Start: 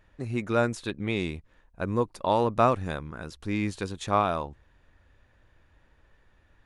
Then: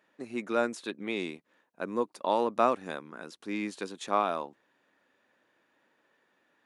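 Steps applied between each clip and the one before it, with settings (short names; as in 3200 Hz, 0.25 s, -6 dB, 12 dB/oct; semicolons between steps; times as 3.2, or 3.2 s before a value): HPF 220 Hz 24 dB/oct; gain -3 dB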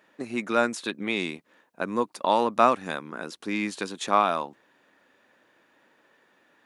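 dynamic EQ 420 Hz, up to -6 dB, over -41 dBFS, Q 0.92; gain +8 dB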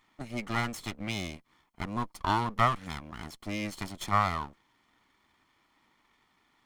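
minimum comb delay 0.93 ms; gain -4 dB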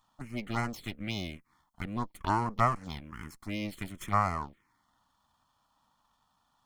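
envelope phaser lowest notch 360 Hz, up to 3500 Hz, full sweep at -26 dBFS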